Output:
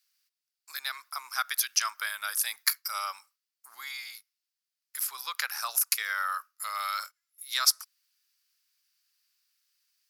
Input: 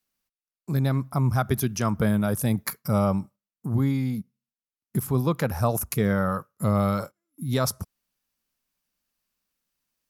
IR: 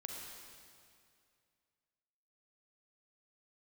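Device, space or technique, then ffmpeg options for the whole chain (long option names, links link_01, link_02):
headphones lying on a table: -af "highpass=frequency=1400:width=0.5412,highpass=frequency=1400:width=1.3066,equalizer=frequency=4800:width_type=o:width=0.49:gain=8,volume=4.5dB"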